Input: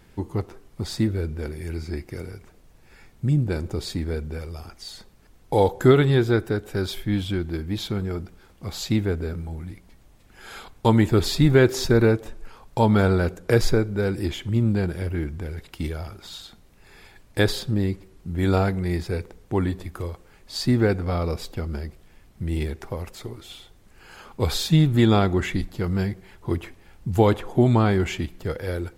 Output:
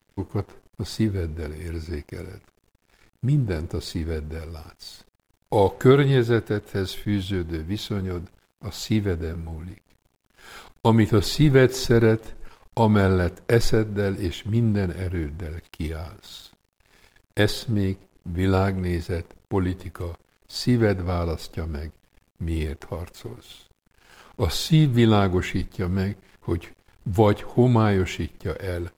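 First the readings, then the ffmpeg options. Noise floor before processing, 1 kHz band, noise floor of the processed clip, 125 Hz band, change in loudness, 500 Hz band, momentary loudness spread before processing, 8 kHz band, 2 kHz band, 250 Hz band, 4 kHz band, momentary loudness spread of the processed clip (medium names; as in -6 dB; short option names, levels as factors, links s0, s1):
-53 dBFS, 0.0 dB, -72 dBFS, -0.5 dB, 0.0 dB, 0.0 dB, 18 LU, -0.5 dB, 0.0 dB, 0.0 dB, -0.5 dB, 18 LU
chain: -af "aeval=exprs='sgn(val(0))*max(abs(val(0))-0.00355,0)':c=same"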